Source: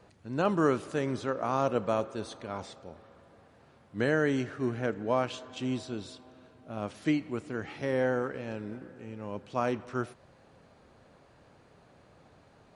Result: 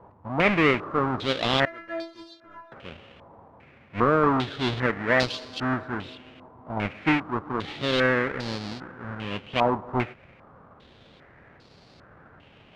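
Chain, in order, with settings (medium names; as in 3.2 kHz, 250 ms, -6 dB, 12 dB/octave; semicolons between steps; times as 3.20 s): square wave that keeps the level; 1.65–2.72 s: inharmonic resonator 330 Hz, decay 0.33 s, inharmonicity 0.002; step-sequenced low-pass 2.5 Hz 960–4500 Hz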